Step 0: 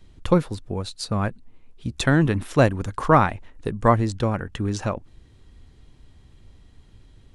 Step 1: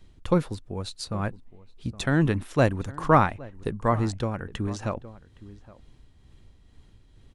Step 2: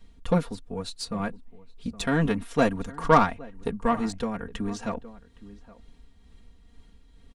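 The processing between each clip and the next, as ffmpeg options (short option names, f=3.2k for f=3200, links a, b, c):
-filter_complex "[0:a]asplit=2[a][b];[b]adelay=816.3,volume=-18dB,highshelf=f=4k:g=-18.4[c];[a][c]amix=inputs=2:normalize=0,tremolo=f=2.2:d=0.41,volume=-2dB"
-af "aecho=1:1:4.3:0.94,aeval=exprs='0.794*(cos(1*acos(clip(val(0)/0.794,-1,1)))-cos(1*PI/2))+0.0355*(cos(8*acos(clip(val(0)/0.794,-1,1)))-cos(8*PI/2))':c=same,volume=-2.5dB"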